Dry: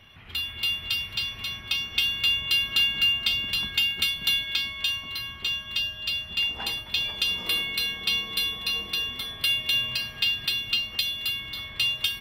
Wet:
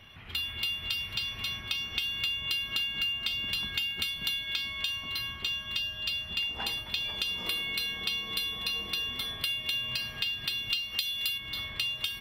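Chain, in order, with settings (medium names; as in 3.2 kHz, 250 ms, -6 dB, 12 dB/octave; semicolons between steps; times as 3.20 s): 10.70–11.38 s: treble shelf 2.2 kHz +9 dB; compression 6:1, threshold -29 dBFS, peak gain reduction 14 dB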